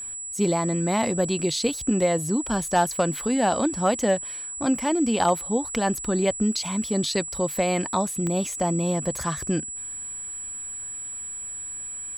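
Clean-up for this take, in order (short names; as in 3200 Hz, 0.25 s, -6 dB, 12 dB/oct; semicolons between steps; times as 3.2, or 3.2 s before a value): clip repair -11 dBFS; de-click; notch 7800 Hz, Q 30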